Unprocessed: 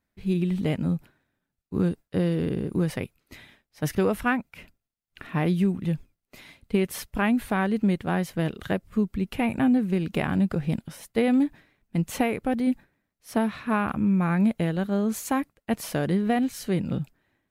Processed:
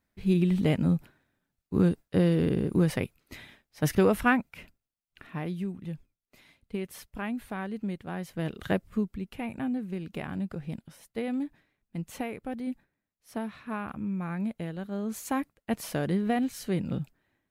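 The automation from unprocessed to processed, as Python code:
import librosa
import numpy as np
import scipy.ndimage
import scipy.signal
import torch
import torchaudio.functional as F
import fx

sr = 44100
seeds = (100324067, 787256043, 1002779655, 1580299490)

y = fx.gain(x, sr, db=fx.line((4.38, 1.0), (5.51, -10.5), (8.14, -10.5), (8.77, 0.0), (9.28, -10.0), (14.85, -10.0), (15.4, -3.5)))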